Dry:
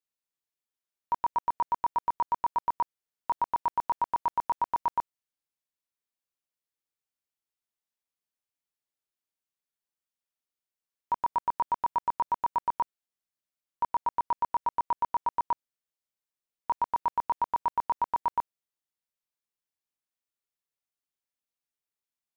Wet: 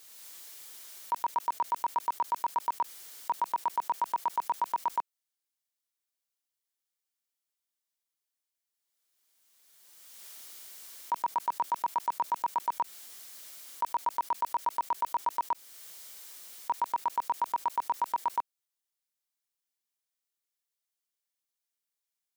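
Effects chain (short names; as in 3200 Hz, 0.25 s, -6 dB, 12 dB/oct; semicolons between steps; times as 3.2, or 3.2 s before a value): HPF 250 Hz 12 dB/oct; high shelf 2400 Hz +8.5 dB; notch 2600 Hz, Q 20; backwards sustainer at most 25 dB/s; gain -3.5 dB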